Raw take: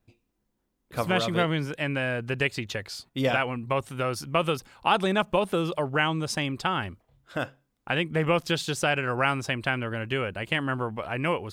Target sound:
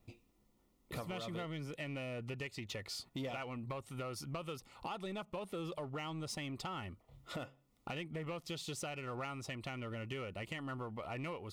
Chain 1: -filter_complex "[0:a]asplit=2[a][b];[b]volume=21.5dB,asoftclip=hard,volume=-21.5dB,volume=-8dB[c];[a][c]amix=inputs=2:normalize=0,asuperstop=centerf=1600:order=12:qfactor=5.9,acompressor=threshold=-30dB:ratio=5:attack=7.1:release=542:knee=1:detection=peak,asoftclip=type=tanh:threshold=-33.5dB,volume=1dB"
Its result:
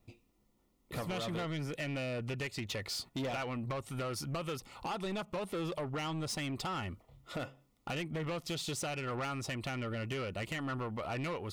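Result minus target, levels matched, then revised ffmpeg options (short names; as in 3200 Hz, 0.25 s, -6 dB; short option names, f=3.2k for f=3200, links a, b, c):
compressor: peak gain reduction -7 dB; overloaded stage: distortion -8 dB
-filter_complex "[0:a]asplit=2[a][b];[b]volume=33dB,asoftclip=hard,volume=-33dB,volume=-8dB[c];[a][c]amix=inputs=2:normalize=0,asuperstop=centerf=1600:order=12:qfactor=5.9,acompressor=threshold=-40dB:ratio=5:attack=7.1:release=542:knee=1:detection=peak,asoftclip=type=tanh:threshold=-33.5dB,volume=1dB"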